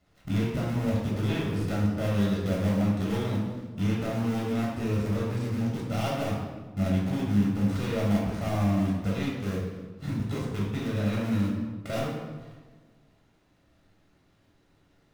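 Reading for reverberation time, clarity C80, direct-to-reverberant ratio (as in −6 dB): 1.4 s, 4.0 dB, −4.5 dB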